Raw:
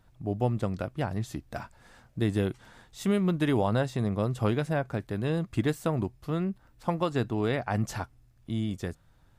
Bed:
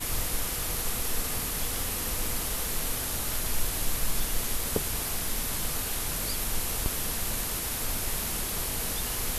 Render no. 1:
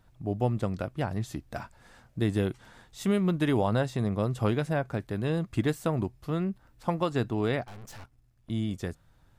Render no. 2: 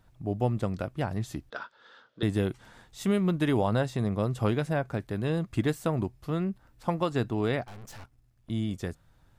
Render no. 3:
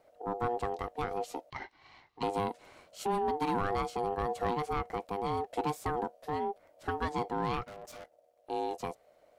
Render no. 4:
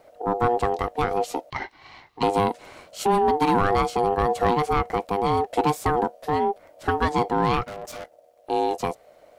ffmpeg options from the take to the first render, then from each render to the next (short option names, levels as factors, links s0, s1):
-filter_complex "[0:a]asettb=1/sr,asplit=3[s0][s1][s2];[s0]atrim=end=7.644[s3];[s1]atrim=start=7.64:end=8.5,asetpts=PTS-STARTPTS,afade=t=in:d=0.004:c=qsin,afade=t=out:st=0.856:d=0.004:c=qsin,aeval=exprs='(tanh(158*val(0)+0.8)-tanh(0.8))/158':c=same[s4];[s2]atrim=start=8.496[s5];[s3][s4]acrossfade=d=0.004:c1=hsin:c2=qsin[s6];[s6][s5]acrossfade=d=0.004:c1=qsin:c2=hsin"
-filter_complex "[0:a]asettb=1/sr,asplit=3[s0][s1][s2];[s0]atrim=end=1.504[s3];[s1]atrim=start=1.5:end=2.23,asetpts=PTS-STARTPTS,afade=t=in:d=0.004:c=qsin,afade=t=out:st=0.726:d=0.004:c=qsin,highpass=440,equalizer=f=460:t=q:w=4:g=6,equalizer=f=720:t=q:w=4:g=-9,equalizer=f=1400:t=q:w=4:g=8,equalizer=f=2300:t=q:w=4:g=-8,equalizer=f=3400:t=q:w=4:g=10,lowpass=f=4900:w=0.5412,lowpass=f=4900:w=1.3066[s4];[s2]atrim=start=2.226[s5];[s3][s4]acrossfade=d=0.004:c1=hsin:c2=qsin[s6];[s6][s5]acrossfade=d=0.004:c1=qsin:c2=hsin"
-af "asoftclip=type=tanh:threshold=0.0794,aeval=exprs='val(0)*sin(2*PI*600*n/s)':c=same"
-af "volume=3.55"